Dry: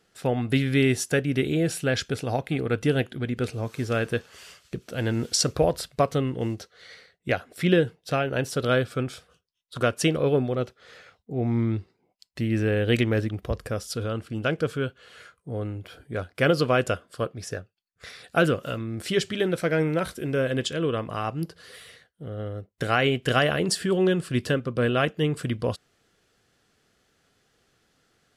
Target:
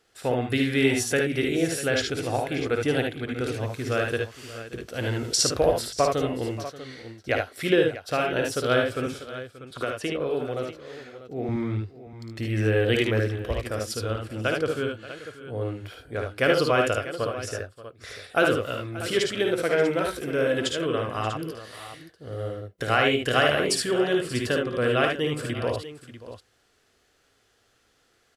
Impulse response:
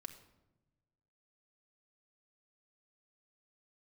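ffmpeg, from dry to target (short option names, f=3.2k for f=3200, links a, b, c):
-filter_complex "[0:a]equalizer=f=170:w=1.6:g=-10.5,asettb=1/sr,asplit=3[a][b][c];[a]atrim=end=9.064[d];[b]atrim=start=9.06:end=11.49,asetpts=PTS-STARTPTS,afade=t=in:d=0.004:c=qsin,afade=t=out:st=2.426:d=0.004:c=qsin,acrossover=split=130|3300[e][f][g];[e]acompressor=threshold=-50dB:ratio=4[h];[f]acompressor=threshold=-27dB:ratio=4[i];[g]acompressor=threshold=-49dB:ratio=4[j];[h][i][j]amix=inputs=3:normalize=0[k];[c]atrim=start=11.486[l];[d][k]acrossfade=d=0.004:c1=hsin:c2=qsin[m];[m][l]acrossfade=d=0.004:c1=qsin:c2=hsin,aecho=1:1:55|74|581|643:0.501|0.596|0.133|0.211"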